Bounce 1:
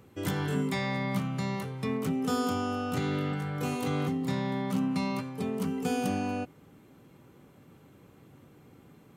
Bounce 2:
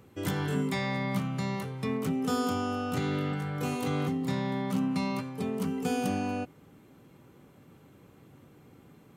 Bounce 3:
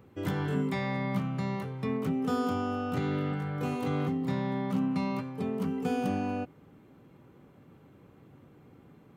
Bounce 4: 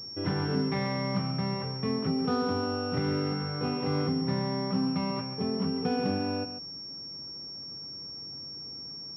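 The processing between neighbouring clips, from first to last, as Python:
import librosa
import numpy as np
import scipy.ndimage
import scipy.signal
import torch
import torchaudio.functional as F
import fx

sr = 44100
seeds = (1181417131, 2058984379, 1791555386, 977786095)

y1 = x
y2 = fx.peak_eq(y1, sr, hz=9500.0, db=-11.0, octaves=2.3)
y3 = y2 + 10.0 ** (-11.0 / 20.0) * np.pad(y2, (int(140 * sr / 1000.0), 0))[:len(y2)]
y3 = fx.pwm(y3, sr, carrier_hz=5500.0)
y3 = F.gain(torch.from_numpy(y3), 1.5).numpy()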